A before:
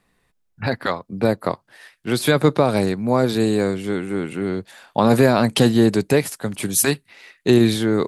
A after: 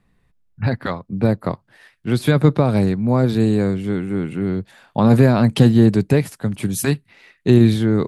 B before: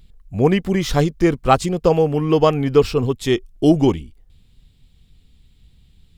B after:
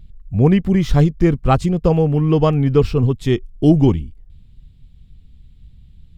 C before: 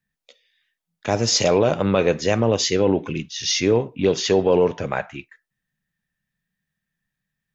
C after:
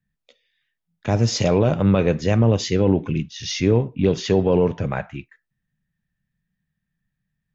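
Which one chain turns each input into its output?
tone controls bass +11 dB, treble -5 dB; trim -3 dB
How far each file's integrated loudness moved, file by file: +1.5 LU, +1.5 LU, 0.0 LU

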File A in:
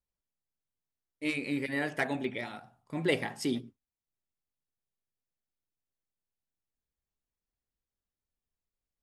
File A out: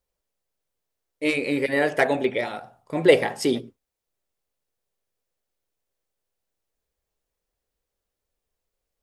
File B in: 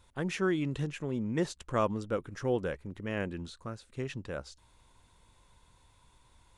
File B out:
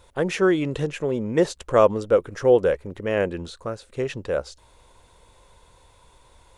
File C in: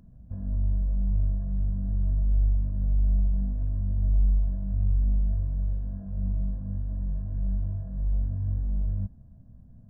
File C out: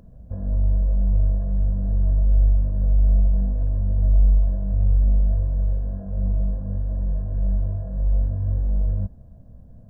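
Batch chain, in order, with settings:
graphic EQ 125/250/500 Hz -3/-4/+9 dB; normalise loudness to -23 LUFS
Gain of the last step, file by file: +8.0 dB, +8.0 dB, +6.5 dB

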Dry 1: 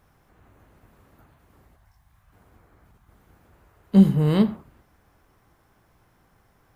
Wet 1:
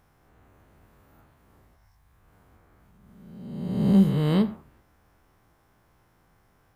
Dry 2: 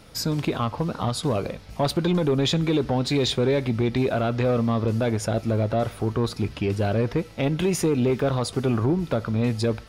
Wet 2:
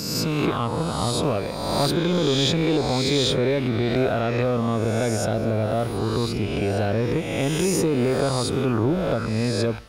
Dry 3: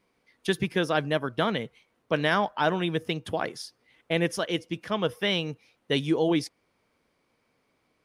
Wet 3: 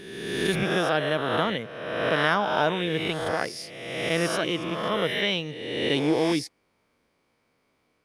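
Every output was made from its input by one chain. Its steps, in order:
reverse spectral sustain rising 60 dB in 1.36 s; peak normalisation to -9 dBFS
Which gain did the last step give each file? -5.0 dB, -1.5 dB, -2.0 dB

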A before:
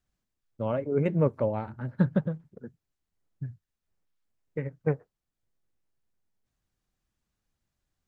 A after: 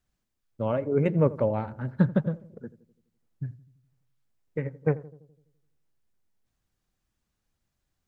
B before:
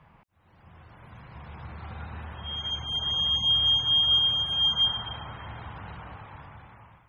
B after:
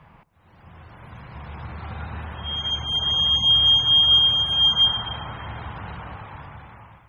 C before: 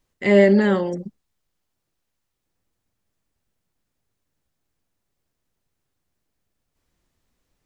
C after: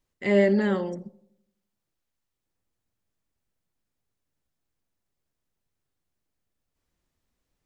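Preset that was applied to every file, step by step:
filtered feedback delay 84 ms, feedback 58%, low-pass 920 Hz, level -17 dB; peak normalisation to -9 dBFS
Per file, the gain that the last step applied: +2.0 dB, +6.0 dB, -6.5 dB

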